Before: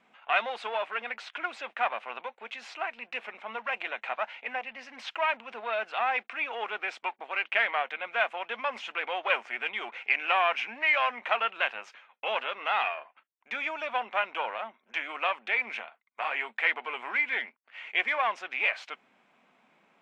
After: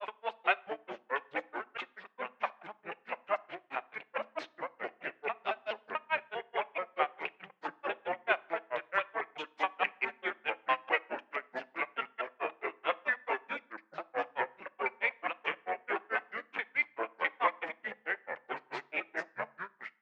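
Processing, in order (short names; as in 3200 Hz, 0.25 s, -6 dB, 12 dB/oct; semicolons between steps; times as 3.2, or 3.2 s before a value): slices in reverse order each 0.109 s, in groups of 8; high shelf 4200 Hz -7 dB; echoes that change speed 0.275 s, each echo -3 st, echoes 3; grains 0.124 s, grains 4.6/s, pitch spread up and down by 0 st; on a send: reverb RT60 0.60 s, pre-delay 3 ms, DRR 20 dB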